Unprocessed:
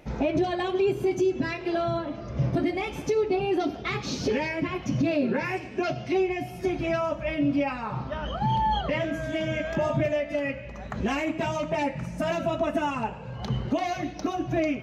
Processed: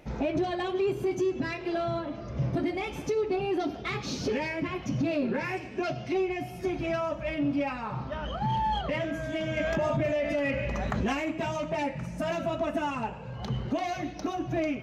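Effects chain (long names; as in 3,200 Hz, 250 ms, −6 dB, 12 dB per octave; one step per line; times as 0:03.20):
in parallel at −6 dB: soft clipping −30 dBFS, distortion −8 dB
0:09.57–0:11.13: on the sum: envelope flattener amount 70%
level −5 dB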